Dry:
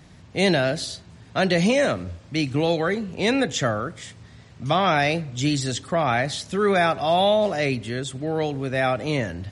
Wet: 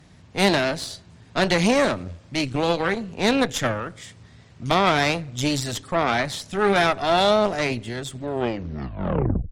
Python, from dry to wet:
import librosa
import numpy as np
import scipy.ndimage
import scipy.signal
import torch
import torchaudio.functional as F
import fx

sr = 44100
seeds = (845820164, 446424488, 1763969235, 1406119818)

y = fx.tape_stop_end(x, sr, length_s=1.36)
y = fx.cheby_harmonics(y, sr, harmonics=(2, 6, 7), levels_db=(-9, -21, -30), full_scale_db=-7.5)